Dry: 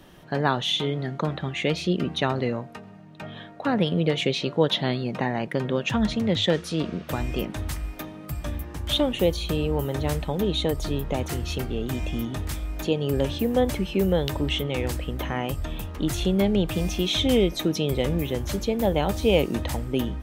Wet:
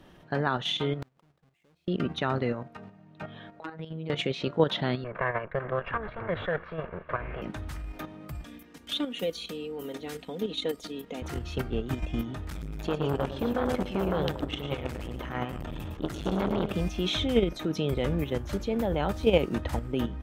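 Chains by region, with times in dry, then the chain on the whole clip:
1.02–1.88 half-waves squared off + flipped gate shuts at -23 dBFS, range -38 dB
3.6–4.1 compressor, threshold -30 dBFS + robotiser 160 Hz
5.04–7.42 minimum comb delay 1.8 ms + LPF 2000 Hz 24 dB/oct + tilt shelf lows -6 dB, about 780 Hz
8.44–11.22 HPF 300 Hz + bell 920 Hz -11.5 dB 1.9 oct + comb 4.2 ms, depth 67%
12.5–16.74 feedback echo 0.112 s, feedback 44%, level -7 dB + core saturation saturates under 750 Hz
whole clip: dynamic EQ 1400 Hz, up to +6 dB, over -48 dBFS, Q 2.6; level quantiser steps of 9 dB; high shelf 5500 Hz -10 dB

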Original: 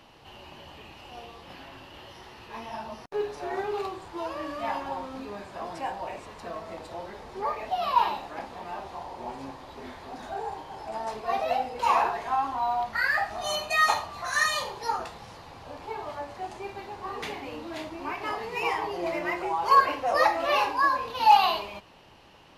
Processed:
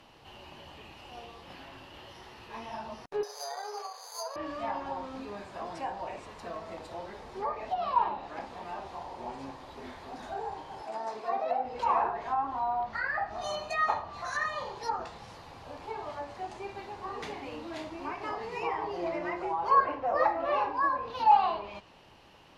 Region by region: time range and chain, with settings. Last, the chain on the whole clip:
3.23–4.36 brick-wall FIR high-pass 420 Hz + air absorption 450 m + careless resampling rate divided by 8×, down filtered, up zero stuff
10.82–11.65 HPF 230 Hz + dynamic EQ 3000 Hz, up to -5 dB, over -54 dBFS, Q 3.8
whole clip: treble ducked by the level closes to 2300 Hz, closed at -22.5 dBFS; dynamic EQ 2700 Hz, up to -7 dB, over -42 dBFS, Q 0.93; gain -2.5 dB

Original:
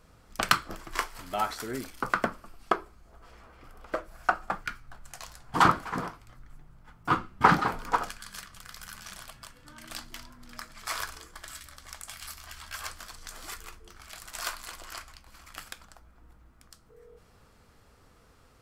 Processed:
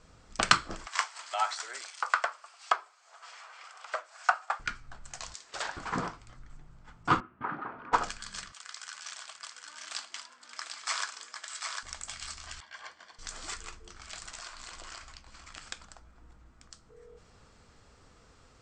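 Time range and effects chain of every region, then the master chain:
0.86–4.6 HPF 690 Hz 24 dB/oct + mismatched tape noise reduction encoder only
5.34–5.77 weighting filter ITU-R 468 + compressor 2.5:1, threshold -38 dBFS + ring modulator 350 Hz
7.2–7.93 speaker cabinet 170–2200 Hz, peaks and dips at 180 Hz -9 dB, 480 Hz -5 dB, 820 Hz -4 dB, 2100 Hz -5 dB + compressor 2:1, threshold -43 dBFS
8.52–11.83 HPF 780 Hz + echo 0.749 s -5 dB
12.6–13.19 HPF 750 Hz 6 dB/oct + tape spacing loss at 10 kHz 26 dB + notch comb 1300 Hz
14.29–15.68 median filter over 3 samples + compressor 10:1, threshold -41 dBFS
whole clip: steep low-pass 8300 Hz 72 dB/oct; high shelf 4700 Hz +6 dB

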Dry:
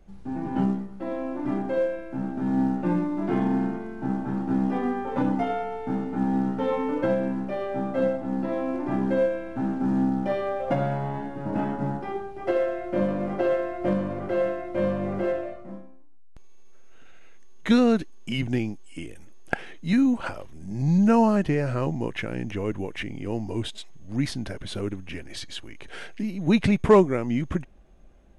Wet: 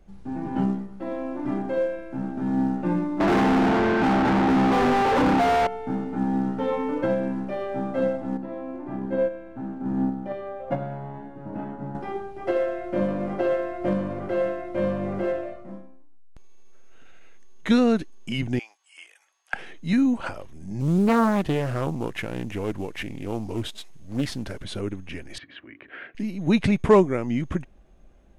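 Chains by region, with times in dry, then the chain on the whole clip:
3.2–5.67 LPF 3300 Hz + overdrive pedal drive 40 dB, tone 1400 Hz, clips at -13 dBFS
8.37–11.95 notch 5400 Hz, Q 17 + gate -24 dBFS, range -6 dB + high shelf 2600 Hz -9 dB
18.59–19.54 HPF 850 Hz 24 dB/oct + high shelf 7600 Hz -8 dB
20.8–24.64 CVSD 64 kbps + Doppler distortion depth 0.55 ms
25.38–26.15 speaker cabinet 160–2500 Hz, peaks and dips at 190 Hz -9 dB, 280 Hz +6 dB, 460 Hz -6 dB, 840 Hz -9 dB, 1800 Hz +4 dB + notches 50/100/150/200/250/300/350/400/450 Hz
whole clip: dry

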